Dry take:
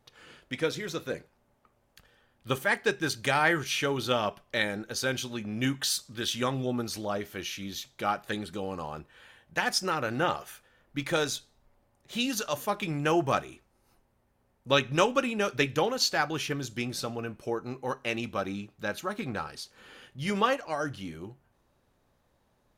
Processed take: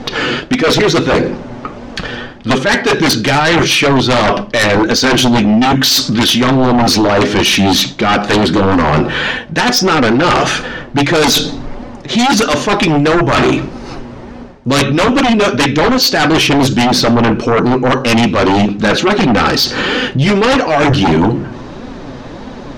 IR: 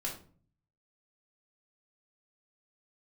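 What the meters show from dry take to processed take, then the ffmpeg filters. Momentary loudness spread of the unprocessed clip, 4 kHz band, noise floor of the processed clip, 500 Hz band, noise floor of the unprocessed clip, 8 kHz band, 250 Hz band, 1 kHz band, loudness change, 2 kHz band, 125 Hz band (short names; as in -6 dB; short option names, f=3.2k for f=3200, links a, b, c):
12 LU, +20.0 dB, -29 dBFS, +18.5 dB, -70 dBFS, +17.0 dB, +22.5 dB, +18.5 dB, +19.0 dB, +17.5 dB, +21.0 dB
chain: -filter_complex "[0:a]lowpass=f=5.8k:w=0.5412,lowpass=f=5.8k:w=1.3066,flanger=delay=3.9:depth=4.3:regen=38:speed=1.6:shape=sinusoidal,asplit=2[a][b];[1:a]atrim=start_sample=2205,adelay=31[c];[b][c]afir=irnorm=-1:irlink=0,volume=-20.5dB[d];[a][d]amix=inputs=2:normalize=0,areverse,acompressor=threshold=-43dB:ratio=8,areverse,equalizer=f=280:w=1.4:g=8.5,aeval=exprs='0.0299*sin(PI/2*3.16*val(0)/0.0299)':c=same,alimiter=level_in=35dB:limit=-1dB:release=50:level=0:latency=1,volume=-5.5dB"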